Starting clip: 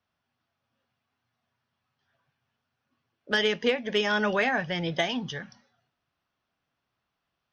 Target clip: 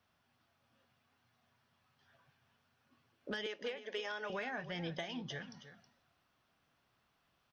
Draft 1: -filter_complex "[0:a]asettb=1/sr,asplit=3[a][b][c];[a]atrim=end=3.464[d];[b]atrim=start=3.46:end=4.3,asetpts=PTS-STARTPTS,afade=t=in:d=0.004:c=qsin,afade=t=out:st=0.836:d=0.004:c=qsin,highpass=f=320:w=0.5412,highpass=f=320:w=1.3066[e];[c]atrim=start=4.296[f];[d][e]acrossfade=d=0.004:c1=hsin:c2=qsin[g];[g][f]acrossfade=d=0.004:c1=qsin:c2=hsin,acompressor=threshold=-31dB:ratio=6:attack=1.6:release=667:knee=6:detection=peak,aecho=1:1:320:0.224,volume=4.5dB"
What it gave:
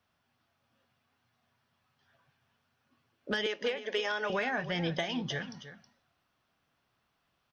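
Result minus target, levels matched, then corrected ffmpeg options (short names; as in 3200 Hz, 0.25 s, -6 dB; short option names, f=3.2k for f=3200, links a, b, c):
compressor: peak gain reduction -9 dB
-filter_complex "[0:a]asettb=1/sr,asplit=3[a][b][c];[a]atrim=end=3.464[d];[b]atrim=start=3.46:end=4.3,asetpts=PTS-STARTPTS,afade=t=in:d=0.004:c=qsin,afade=t=out:st=0.836:d=0.004:c=qsin,highpass=f=320:w=0.5412,highpass=f=320:w=1.3066[e];[c]atrim=start=4.296[f];[d][e]acrossfade=d=0.004:c1=hsin:c2=qsin[g];[g][f]acrossfade=d=0.004:c1=qsin:c2=hsin,acompressor=threshold=-41.5dB:ratio=6:attack=1.6:release=667:knee=6:detection=peak,aecho=1:1:320:0.224,volume=4.5dB"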